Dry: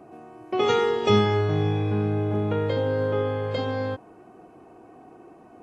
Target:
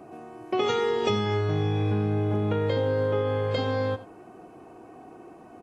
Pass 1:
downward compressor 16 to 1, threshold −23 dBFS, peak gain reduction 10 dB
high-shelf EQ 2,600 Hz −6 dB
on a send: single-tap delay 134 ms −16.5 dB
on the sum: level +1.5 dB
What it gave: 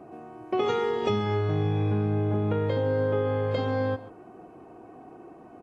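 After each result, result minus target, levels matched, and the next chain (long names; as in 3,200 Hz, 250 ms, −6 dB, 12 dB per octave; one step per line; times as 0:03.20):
echo 48 ms late; 4,000 Hz band −5.0 dB
downward compressor 16 to 1, threshold −23 dBFS, peak gain reduction 10 dB
high-shelf EQ 2,600 Hz −6 dB
on a send: single-tap delay 86 ms −16.5 dB
on the sum: level +1.5 dB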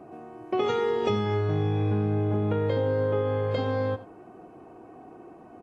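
4,000 Hz band −5.0 dB
downward compressor 16 to 1, threshold −23 dBFS, peak gain reduction 10 dB
high-shelf EQ 2,600 Hz +3 dB
on a send: single-tap delay 86 ms −16.5 dB
on the sum: level +1.5 dB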